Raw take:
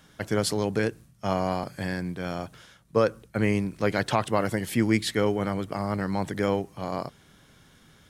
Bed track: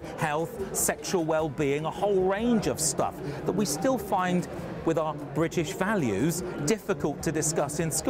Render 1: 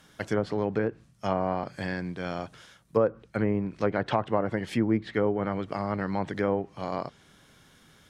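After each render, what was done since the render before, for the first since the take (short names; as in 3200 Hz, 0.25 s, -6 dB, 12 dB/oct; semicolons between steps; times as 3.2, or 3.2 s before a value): treble ducked by the level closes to 1000 Hz, closed at -19.5 dBFS; low shelf 200 Hz -4.5 dB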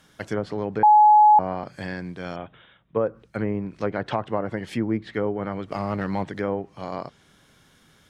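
0.83–1.39 bleep 846 Hz -10 dBFS; 2.36–3.07 Chebyshev low-pass 3700 Hz, order 8; 5.71–6.24 sample leveller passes 1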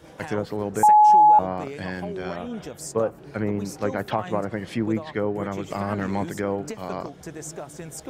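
add bed track -9.5 dB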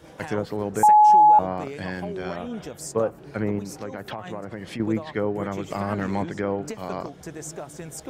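3.59–4.8 compressor 3:1, threshold -31 dBFS; 6.22–6.62 LPF 4500 Hz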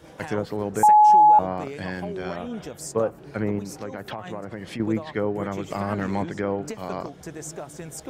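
nothing audible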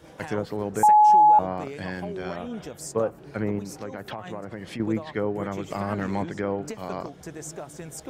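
gain -1.5 dB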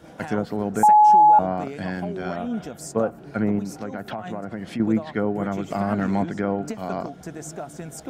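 small resonant body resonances 220/690/1400 Hz, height 8 dB, ringing for 25 ms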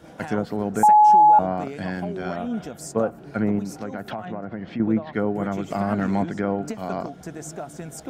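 4.25–5.13 air absorption 210 m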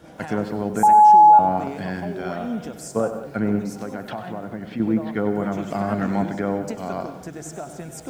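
non-linear reverb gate 0.21 s rising, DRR 11 dB; lo-fi delay 97 ms, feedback 35%, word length 8-bit, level -12 dB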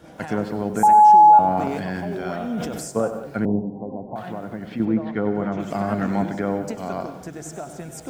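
1.48–2.9 sustainer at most 28 dB/s; 3.45–4.16 steep low-pass 1000 Hz 96 dB/oct; 4.85–5.6 air absorption 130 m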